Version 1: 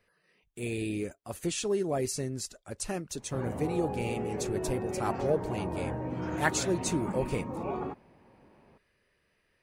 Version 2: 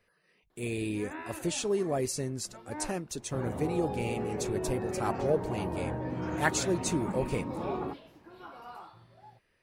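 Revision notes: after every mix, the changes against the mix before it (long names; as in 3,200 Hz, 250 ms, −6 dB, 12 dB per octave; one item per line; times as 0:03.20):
first sound: unmuted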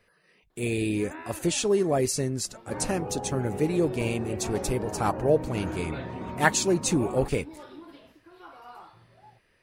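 speech +6.0 dB
second sound: entry −0.65 s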